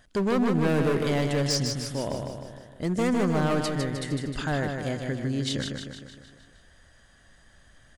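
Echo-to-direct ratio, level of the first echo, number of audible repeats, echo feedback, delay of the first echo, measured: -3.5 dB, -5.0 dB, 6, 55%, 154 ms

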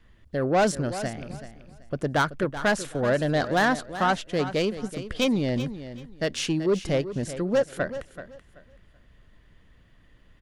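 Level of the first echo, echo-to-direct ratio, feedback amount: -12.5 dB, -12.5 dB, 23%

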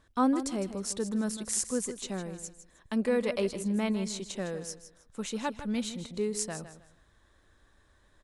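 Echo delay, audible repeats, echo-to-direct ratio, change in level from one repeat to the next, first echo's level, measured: 157 ms, 2, -11.5 dB, -11.5 dB, -12.0 dB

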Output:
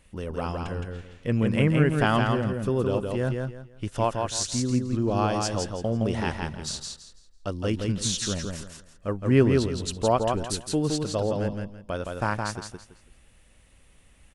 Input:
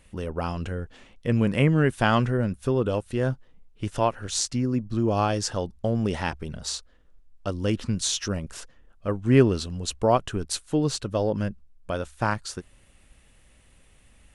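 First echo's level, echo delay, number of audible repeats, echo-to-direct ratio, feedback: -4.0 dB, 166 ms, 3, -3.5 dB, 26%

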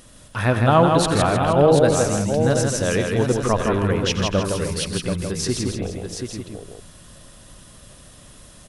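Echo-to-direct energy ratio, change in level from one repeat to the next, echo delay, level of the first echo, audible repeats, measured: -0.5 dB, no regular repeats, 90 ms, -13.5 dB, 7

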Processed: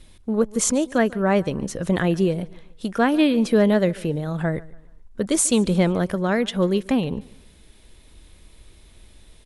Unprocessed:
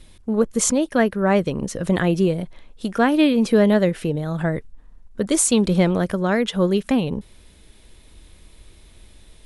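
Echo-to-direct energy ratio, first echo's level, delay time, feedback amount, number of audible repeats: -21.5 dB, -22.0 dB, 143 ms, 37%, 2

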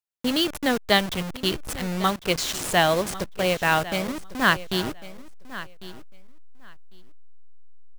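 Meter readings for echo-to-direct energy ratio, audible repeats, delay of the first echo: -16.0 dB, 2, 1100 ms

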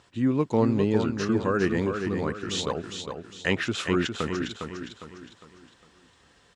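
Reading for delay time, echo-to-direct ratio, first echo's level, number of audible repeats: 406 ms, -5.5 dB, -6.5 dB, 4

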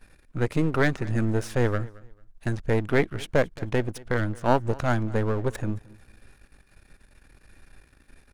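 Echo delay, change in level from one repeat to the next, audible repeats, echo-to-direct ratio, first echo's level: 222 ms, -12.0 dB, 2, -21.5 dB, -22.0 dB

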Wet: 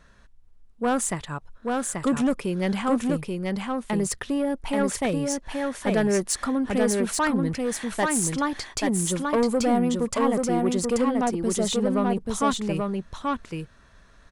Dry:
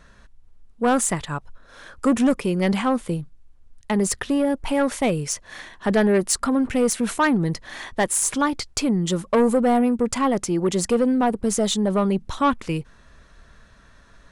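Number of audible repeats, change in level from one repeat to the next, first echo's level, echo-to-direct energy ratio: 1, no regular repeats, -3.0 dB, -3.0 dB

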